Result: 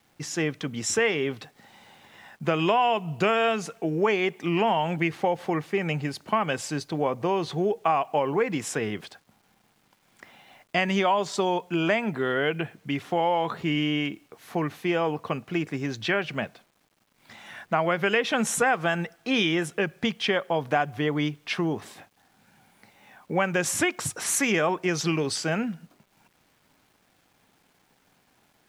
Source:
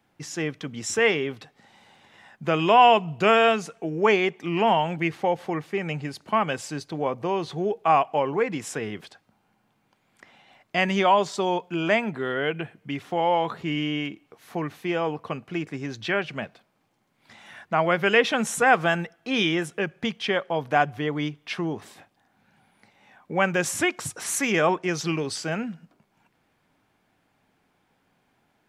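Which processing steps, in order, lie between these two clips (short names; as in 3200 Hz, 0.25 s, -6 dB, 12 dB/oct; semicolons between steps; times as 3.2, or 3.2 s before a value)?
compressor 5:1, threshold -22 dBFS, peak gain reduction 10.5 dB; bit-crush 11-bit; gain +2.5 dB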